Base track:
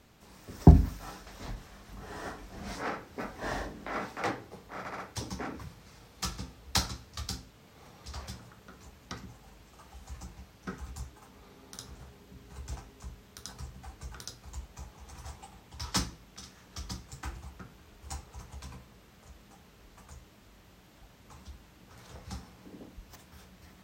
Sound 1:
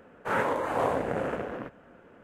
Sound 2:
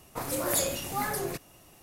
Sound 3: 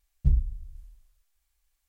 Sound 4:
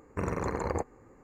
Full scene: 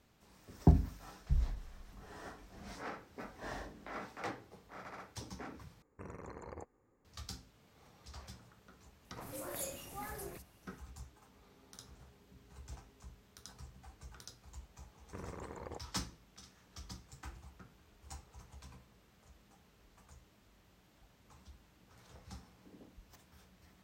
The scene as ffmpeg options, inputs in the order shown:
ffmpeg -i bed.wav -i cue0.wav -i cue1.wav -i cue2.wav -i cue3.wav -filter_complex "[4:a]asplit=2[link_01][link_02];[0:a]volume=-9dB[link_03];[2:a]acrossover=split=4500[link_04][link_05];[link_05]adelay=40[link_06];[link_04][link_06]amix=inputs=2:normalize=0[link_07];[link_03]asplit=2[link_08][link_09];[link_08]atrim=end=5.824[link_10];[link_01]atrim=end=1.23,asetpts=PTS-STARTPTS,volume=-17dB[link_11];[link_09]atrim=start=7.046[link_12];[3:a]atrim=end=1.88,asetpts=PTS-STARTPTS,volume=-10dB,afade=type=in:duration=0.004:curve=hsin,afade=type=out:start_time=1.876:duration=0.004:curve=hsin,adelay=1050[link_13];[link_07]atrim=end=1.82,asetpts=PTS-STARTPTS,volume=-14dB,afade=type=in:duration=0.004:curve=hsin,afade=type=out:start_time=1.816:duration=0.004:curve=hsin,adelay=9010[link_14];[link_02]atrim=end=1.23,asetpts=PTS-STARTPTS,volume=-15.5dB,afade=type=in:duration=0.004:curve=hsin,afade=type=out:start_time=1.226:duration=0.004:curve=hsin,adelay=14960[link_15];[link_10][link_11]acrossfade=duration=0.004:curve1=hsin:curve2=hsin[link_16];[link_16][link_12]acrossfade=duration=0.004:curve1=hsin:curve2=hsin[link_17];[link_17][link_13][link_14][link_15]amix=inputs=4:normalize=0" out.wav

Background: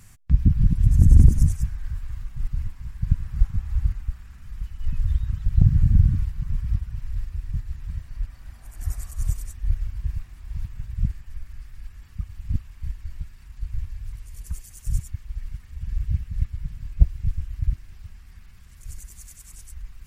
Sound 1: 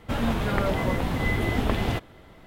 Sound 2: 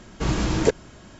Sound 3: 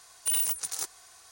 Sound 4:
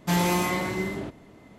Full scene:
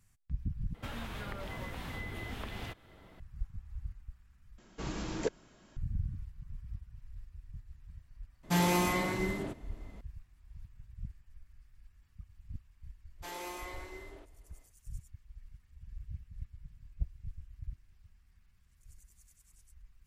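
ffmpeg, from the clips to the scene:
ffmpeg -i bed.wav -i cue0.wav -i cue1.wav -i cue2.wav -i cue3.wav -filter_complex "[4:a]asplit=2[link_01][link_02];[0:a]volume=-19dB[link_03];[1:a]acrossover=split=100|1100[link_04][link_05][link_06];[link_04]acompressor=threshold=-36dB:ratio=5[link_07];[link_05]acompressor=threshold=-42dB:ratio=3[link_08];[link_06]acompressor=threshold=-38dB:ratio=6[link_09];[link_07][link_08][link_09]amix=inputs=3:normalize=0[link_10];[2:a]equalizer=frequency=86:width_type=o:width=0.66:gain=-12[link_11];[link_02]highpass=frequency=330:width=0.5412,highpass=frequency=330:width=1.3066[link_12];[link_03]asplit=3[link_13][link_14][link_15];[link_13]atrim=end=0.744[link_16];[link_10]atrim=end=2.46,asetpts=PTS-STARTPTS,volume=-6.5dB[link_17];[link_14]atrim=start=3.196:end=4.584[link_18];[link_11]atrim=end=1.19,asetpts=PTS-STARTPTS,volume=-13.5dB[link_19];[link_15]atrim=start=5.766[link_20];[link_01]atrim=end=1.58,asetpts=PTS-STARTPTS,volume=-4.5dB,afade=type=in:duration=0.004:curve=hsin,afade=type=out:start_time=1.576:duration=0.004:curve=hsin,adelay=8430[link_21];[link_12]atrim=end=1.58,asetpts=PTS-STARTPTS,volume=-16.5dB,afade=type=in:duration=0.1,afade=type=out:start_time=1.48:duration=0.1,adelay=13150[link_22];[link_16][link_17]acrossfade=duration=0.004:curve1=hsin:curve2=hsin[link_23];[link_23][link_18]acrossfade=duration=0.004:curve1=hsin:curve2=hsin[link_24];[link_24][link_19]acrossfade=duration=0.004:curve1=hsin:curve2=hsin[link_25];[link_25][link_20]acrossfade=duration=0.004:curve1=hsin:curve2=hsin[link_26];[link_26][link_21][link_22]amix=inputs=3:normalize=0" out.wav

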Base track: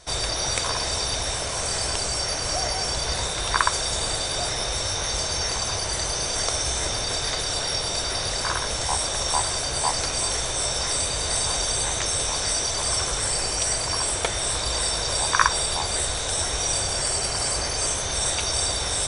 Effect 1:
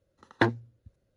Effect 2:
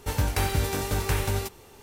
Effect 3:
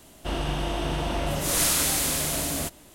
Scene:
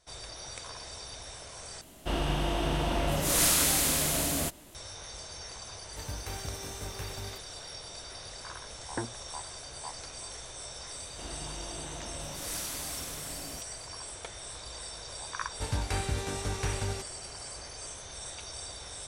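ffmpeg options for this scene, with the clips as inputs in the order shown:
ffmpeg -i bed.wav -i cue0.wav -i cue1.wav -i cue2.wav -filter_complex "[3:a]asplit=2[link_01][link_02];[2:a]asplit=2[link_03][link_04];[0:a]volume=-17.5dB[link_05];[1:a]lowpass=1500[link_06];[link_04]lowpass=frequency=9800:width=0.5412,lowpass=frequency=9800:width=1.3066[link_07];[link_05]asplit=2[link_08][link_09];[link_08]atrim=end=1.814[link_10];[link_01]atrim=end=2.94,asetpts=PTS-STARTPTS,volume=-1.5dB[link_11];[link_09]atrim=start=4.746[link_12];[link_03]atrim=end=1.82,asetpts=PTS-STARTPTS,volume=-14.5dB,afade=type=in:duration=0.004:curve=hsin,afade=type=out:start_time=1.816:duration=0.004:curve=hsin,adelay=5900[link_13];[link_06]atrim=end=1.16,asetpts=PTS-STARTPTS,volume=-11dB,afade=type=in:duration=0.004:curve=hsin,afade=type=out:start_time=1.156:duration=0.004:curve=hsin,adelay=8560[link_14];[link_02]atrim=end=2.94,asetpts=PTS-STARTPTS,volume=-15dB,afade=type=in:duration=0.004:curve=hsin,afade=type=out:start_time=2.936:duration=0.004:curve=hsin,adelay=10930[link_15];[link_07]atrim=end=1.82,asetpts=PTS-STARTPTS,volume=-6.5dB,afade=type=in:duration=0.004:curve=hsin,afade=type=out:start_time=1.816:duration=0.004:curve=hsin,adelay=15540[link_16];[link_10][link_11]acrossfade=duration=0.004:curve1=hsin:curve2=hsin[link_17];[link_17][link_12]acrossfade=duration=0.004:curve1=hsin:curve2=hsin[link_18];[link_18][link_13][link_14][link_15][link_16]amix=inputs=5:normalize=0" out.wav

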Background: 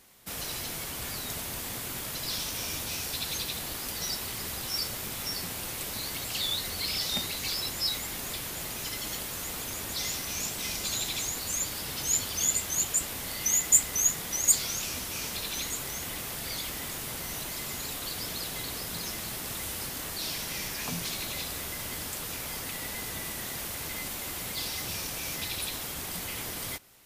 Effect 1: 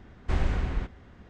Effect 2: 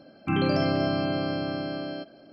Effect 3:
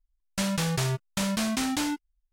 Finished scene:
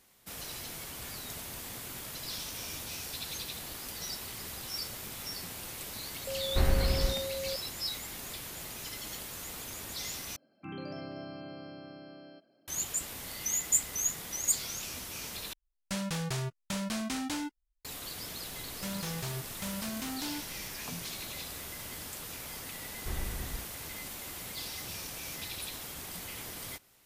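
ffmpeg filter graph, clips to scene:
ffmpeg -i bed.wav -i cue0.wav -i cue1.wav -i cue2.wav -filter_complex "[1:a]asplit=2[link_01][link_02];[3:a]asplit=2[link_03][link_04];[0:a]volume=-6dB[link_05];[link_01]aeval=exprs='val(0)+0.02*sin(2*PI*540*n/s)':channel_layout=same[link_06];[2:a]highpass=110[link_07];[link_04]aeval=exprs='val(0)+0.5*0.0133*sgn(val(0))':channel_layout=same[link_08];[link_05]asplit=3[link_09][link_10][link_11];[link_09]atrim=end=10.364[link_12];[link_07]atrim=end=2.32,asetpts=PTS-STARTPTS,volume=-17dB[link_13];[link_10]atrim=start=12.676:end=15.534[link_14];[link_03]atrim=end=2.32,asetpts=PTS-STARTPTS,volume=-7dB[link_15];[link_11]atrim=start=17.846[link_16];[link_06]atrim=end=1.29,asetpts=PTS-STARTPTS,volume=-0.5dB,afade=type=in:duration=0.004:curve=hsin,afade=type=out:start_time=1.286:duration=0.004:curve=hsin,adelay=6270[link_17];[link_08]atrim=end=2.32,asetpts=PTS-STARTPTS,volume=-12dB,afade=type=in:duration=0.004:curve=hsin,afade=type=out:start_time=2.316:duration=0.004:curve=hsin,adelay=18450[link_18];[link_02]atrim=end=1.29,asetpts=PTS-STARTPTS,volume=-11dB,afade=type=in:duration=0.004:curve=hsin,afade=type=out:start_time=1.286:duration=0.004:curve=hsin,adelay=22770[link_19];[link_12][link_13]acrossfade=duration=0.004:curve1=hsin:curve2=hsin[link_20];[link_20][link_14]acrossfade=duration=0.004:curve1=hsin:curve2=hsin[link_21];[link_21][link_15]acrossfade=duration=0.004:curve1=hsin:curve2=hsin[link_22];[link_22][link_16]acrossfade=duration=0.004:curve1=hsin:curve2=hsin[link_23];[link_23][link_17][link_18][link_19]amix=inputs=4:normalize=0" out.wav

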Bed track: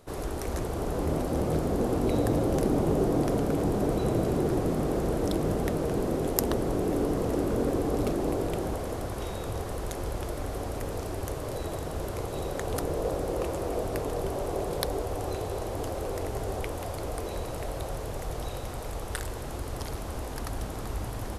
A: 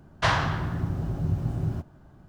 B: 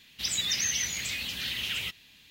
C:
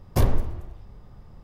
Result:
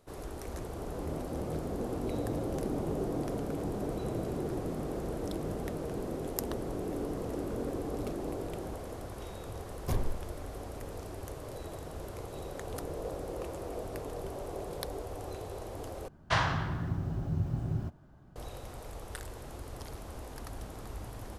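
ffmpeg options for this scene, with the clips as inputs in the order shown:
ffmpeg -i bed.wav -i cue0.wav -i cue1.wav -i cue2.wav -filter_complex "[0:a]volume=-8.5dB,asplit=2[link_01][link_02];[link_01]atrim=end=16.084[link_03];[1:a]atrim=end=2.28,asetpts=PTS-STARTPTS,volume=-5dB[link_04];[link_02]atrim=start=18.356[link_05];[3:a]atrim=end=1.43,asetpts=PTS-STARTPTS,volume=-11.5dB,afade=type=in:duration=0.004:curve=hsin,afade=type=out:start_time=1.426:duration=0.004:curve=hsin,adelay=9720[link_06];[link_03][link_04]acrossfade=duration=0.004:curve1=hsin:curve2=hsin[link_07];[link_07][link_05]acrossfade=duration=0.004:curve1=hsin:curve2=hsin[link_08];[link_08][link_06]amix=inputs=2:normalize=0" out.wav

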